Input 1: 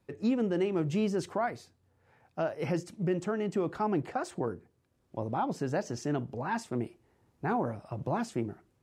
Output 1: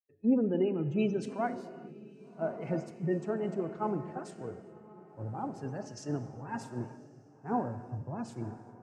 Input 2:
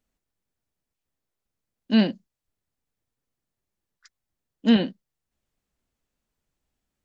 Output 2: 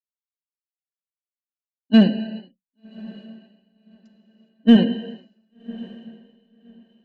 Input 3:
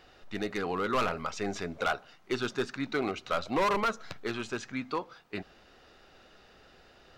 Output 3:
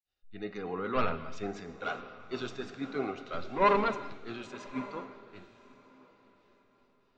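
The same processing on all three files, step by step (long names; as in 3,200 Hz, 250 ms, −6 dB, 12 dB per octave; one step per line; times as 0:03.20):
gate on every frequency bin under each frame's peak −30 dB strong
noise gate with hold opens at −47 dBFS
harmonic and percussive parts rebalanced percussive −9 dB
reverb whose tail is shaped and stops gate 440 ms flat, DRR 8.5 dB
in parallel at −6 dB: hard clipping −18 dBFS
on the sum: feedback delay with all-pass diffusion 1,134 ms, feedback 49%, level −10 dB
multiband upward and downward expander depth 100%
level −5 dB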